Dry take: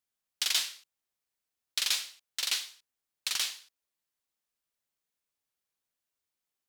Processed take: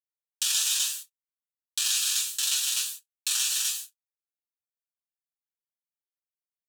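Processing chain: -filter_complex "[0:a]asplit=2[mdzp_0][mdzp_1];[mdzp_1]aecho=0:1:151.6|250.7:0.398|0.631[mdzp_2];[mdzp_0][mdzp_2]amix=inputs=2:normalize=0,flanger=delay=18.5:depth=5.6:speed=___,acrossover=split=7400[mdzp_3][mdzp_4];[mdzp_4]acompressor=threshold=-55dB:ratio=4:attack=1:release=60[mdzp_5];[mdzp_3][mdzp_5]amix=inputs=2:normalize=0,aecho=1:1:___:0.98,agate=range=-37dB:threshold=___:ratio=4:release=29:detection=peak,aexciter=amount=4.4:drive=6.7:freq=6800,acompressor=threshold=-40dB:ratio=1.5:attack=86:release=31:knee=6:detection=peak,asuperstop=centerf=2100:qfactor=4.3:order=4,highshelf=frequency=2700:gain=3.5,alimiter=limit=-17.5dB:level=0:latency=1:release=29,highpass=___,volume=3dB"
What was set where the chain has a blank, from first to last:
1.3, 7.5, -57dB, 1100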